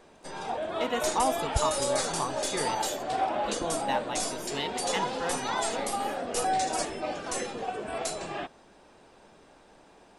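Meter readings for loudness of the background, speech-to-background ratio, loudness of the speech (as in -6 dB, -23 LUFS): -31.0 LUFS, -4.0 dB, -35.0 LUFS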